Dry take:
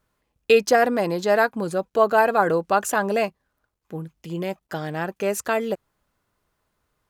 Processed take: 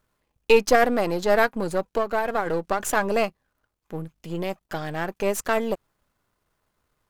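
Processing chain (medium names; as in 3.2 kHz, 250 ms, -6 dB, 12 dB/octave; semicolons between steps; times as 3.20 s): partial rectifier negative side -7 dB; 1.94–2.80 s: compression 12:1, threshold -21 dBFS, peak gain reduction 10 dB; trim +2 dB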